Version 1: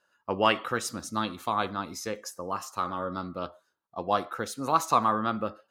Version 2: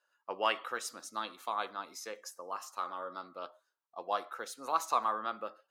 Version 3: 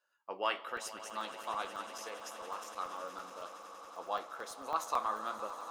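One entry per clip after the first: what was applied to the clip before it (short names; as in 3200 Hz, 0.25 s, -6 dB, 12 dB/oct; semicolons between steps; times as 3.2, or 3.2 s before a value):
HPF 490 Hz 12 dB/oct; gain -6.5 dB
swelling echo 93 ms, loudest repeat 8, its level -17.5 dB; flange 1.1 Hz, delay 9.1 ms, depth 7.6 ms, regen -60%; crackling interface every 0.11 s, samples 128, zero, from 0.77; gain +1 dB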